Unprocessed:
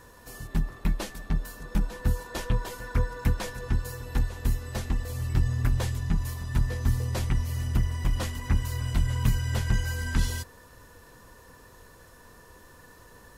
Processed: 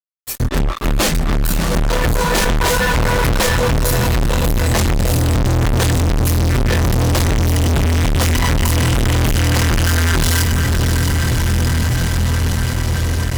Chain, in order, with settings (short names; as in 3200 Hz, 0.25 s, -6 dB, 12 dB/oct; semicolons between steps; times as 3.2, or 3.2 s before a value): spectral noise reduction 22 dB; diffused feedback echo 0.645 s, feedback 73%, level -15 dB; fuzz box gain 50 dB, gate -53 dBFS